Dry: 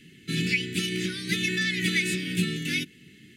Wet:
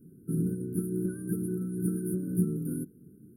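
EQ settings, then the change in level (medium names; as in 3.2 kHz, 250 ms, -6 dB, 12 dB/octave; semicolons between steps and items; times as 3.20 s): brick-wall FIR band-stop 1.6–9.3 kHz; high-order bell 1.1 kHz -13.5 dB 1.2 oct; 0.0 dB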